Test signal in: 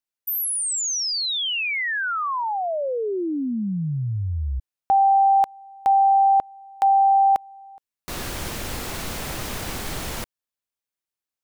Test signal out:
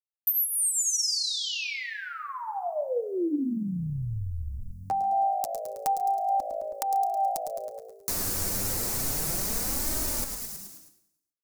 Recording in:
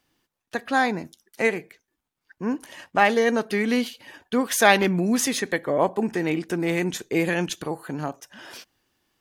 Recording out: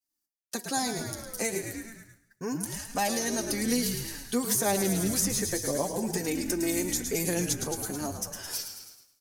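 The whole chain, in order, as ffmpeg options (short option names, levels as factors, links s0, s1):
-filter_complex "[0:a]asplit=2[s0][s1];[s1]asplit=7[s2][s3][s4][s5][s6][s7][s8];[s2]adelay=107,afreqshift=-55,volume=0.355[s9];[s3]adelay=214,afreqshift=-110,volume=0.209[s10];[s4]adelay=321,afreqshift=-165,volume=0.123[s11];[s5]adelay=428,afreqshift=-220,volume=0.0733[s12];[s6]adelay=535,afreqshift=-275,volume=0.0432[s13];[s7]adelay=642,afreqshift=-330,volume=0.0254[s14];[s8]adelay=749,afreqshift=-385,volume=0.015[s15];[s9][s10][s11][s12][s13][s14][s15]amix=inputs=7:normalize=0[s16];[s0][s16]amix=inputs=2:normalize=0,aexciter=amount=9:drive=2.5:freq=4600,bandreject=f=318.7:t=h:w=4,bandreject=f=637.4:t=h:w=4,bandreject=f=956.1:t=h:w=4,bandreject=f=1274.8:t=h:w=4,acrossover=split=700|2900[s17][s18][s19];[s17]acompressor=threshold=0.0631:ratio=4[s20];[s18]acompressor=threshold=0.0112:ratio=4[s21];[s19]acompressor=threshold=0.0501:ratio=4[s22];[s20][s21][s22]amix=inputs=3:normalize=0,flanger=delay=3.2:depth=7.3:regen=15:speed=0.3:shape=sinusoidal,agate=range=0.0224:threshold=0.00398:ratio=3:release=251:detection=peak,asplit=2[s23][s24];[s24]aecho=0:1:139|278|417:0.119|0.0511|0.022[s25];[s23][s25]amix=inputs=2:normalize=0"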